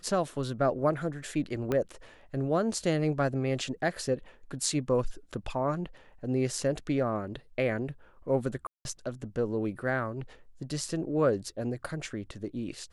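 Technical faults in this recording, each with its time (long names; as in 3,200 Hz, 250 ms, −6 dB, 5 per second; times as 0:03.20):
0:01.72: click −17 dBFS
0:08.67–0:08.85: drop-out 181 ms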